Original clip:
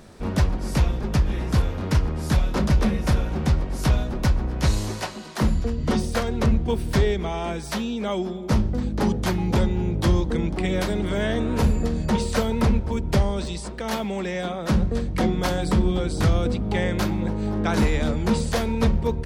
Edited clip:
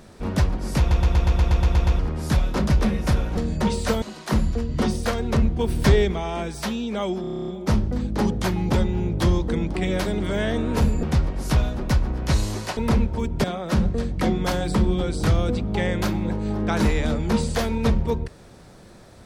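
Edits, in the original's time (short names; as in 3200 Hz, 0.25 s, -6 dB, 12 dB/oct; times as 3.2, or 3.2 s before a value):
0.79 stutter in place 0.12 s, 10 plays
3.37–5.11 swap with 11.85–12.5
6.77–7.21 gain +3.5 dB
8.3 stutter 0.03 s, 10 plays
13.17–14.41 cut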